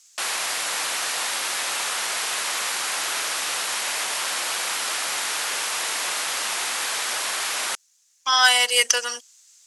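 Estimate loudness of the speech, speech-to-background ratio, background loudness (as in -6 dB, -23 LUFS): -18.5 LUFS, 5.5 dB, -24.0 LUFS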